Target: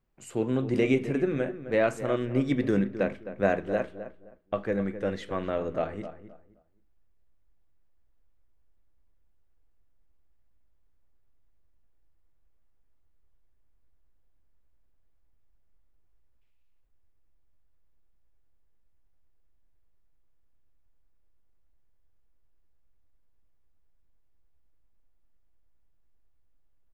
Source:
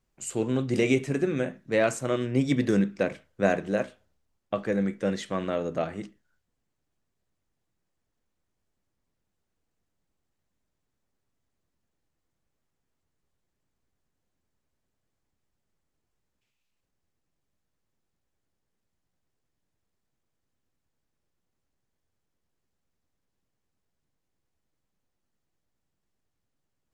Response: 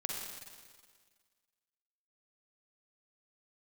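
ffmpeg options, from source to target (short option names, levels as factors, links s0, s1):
-filter_complex "[0:a]equalizer=f=7300:t=o:w=1.8:g=-12,asplit=2[s0][s1];[s1]adelay=261,lowpass=f=1600:p=1,volume=0.266,asplit=2[s2][s3];[s3]adelay=261,lowpass=f=1600:p=1,volume=0.25,asplit=2[s4][s5];[s5]adelay=261,lowpass=f=1600:p=1,volume=0.25[s6];[s2][s4][s6]amix=inputs=3:normalize=0[s7];[s0][s7]amix=inputs=2:normalize=0,asubboost=boost=7.5:cutoff=56"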